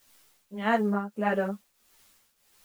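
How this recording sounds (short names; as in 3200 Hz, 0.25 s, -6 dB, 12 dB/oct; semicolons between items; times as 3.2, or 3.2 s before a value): a quantiser's noise floor 10-bit, dither triangular; tremolo triangle 1.6 Hz, depth 80%; a shimmering, thickened sound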